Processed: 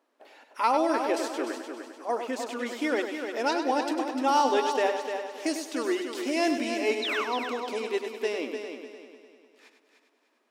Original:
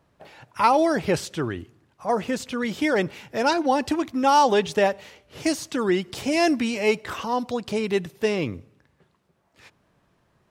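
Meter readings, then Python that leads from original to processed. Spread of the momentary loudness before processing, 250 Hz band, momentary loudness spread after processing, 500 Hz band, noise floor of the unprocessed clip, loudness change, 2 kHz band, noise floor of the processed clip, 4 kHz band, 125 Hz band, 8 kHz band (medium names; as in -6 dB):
10 LU, -5.5 dB, 11 LU, -4.5 dB, -67 dBFS, -5.0 dB, -3.5 dB, -70 dBFS, -3.0 dB, under -25 dB, -4.5 dB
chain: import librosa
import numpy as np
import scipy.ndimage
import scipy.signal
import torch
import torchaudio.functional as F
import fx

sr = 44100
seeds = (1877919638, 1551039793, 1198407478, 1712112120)

y = fx.brickwall_highpass(x, sr, low_hz=230.0)
y = fx.spec_paint(y, sr, seeds[0], shape='fall', start_s=7.02, length_s=0.22, low_hz=990.0, high_hz=4300.0, level_db=-25.0)
y = fx.echo_heads(y, sr, ms=100, heads='first and third', feedback_pct=52, wet_db=-8)
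y = y * librosa.db_to_amplitude(-6.0)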